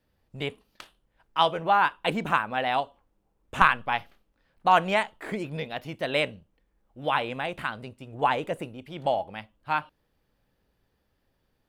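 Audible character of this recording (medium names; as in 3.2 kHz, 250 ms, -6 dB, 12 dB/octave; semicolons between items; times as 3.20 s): noise floor -74 dBFS; spectral tilt -2.0 dB/octave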